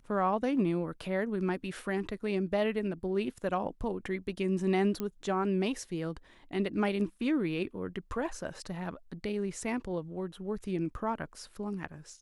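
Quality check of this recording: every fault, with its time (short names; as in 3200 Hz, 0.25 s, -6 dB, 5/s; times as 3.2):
5 pop -20 dBFS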